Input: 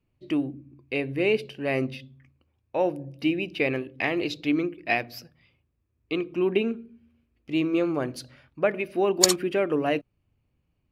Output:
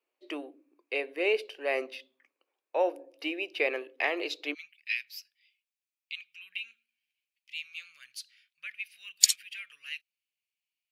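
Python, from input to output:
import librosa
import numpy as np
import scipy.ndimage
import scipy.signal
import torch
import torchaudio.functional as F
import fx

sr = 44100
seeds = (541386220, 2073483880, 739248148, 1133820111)

y = fx.cheby2_highpass(x, sr, hz=fx.steps((0.0, 160.0), (4.53, 890.0)), order=4, stop_db=50)
y = y * 10.0 ** (-1.5 / 20.0)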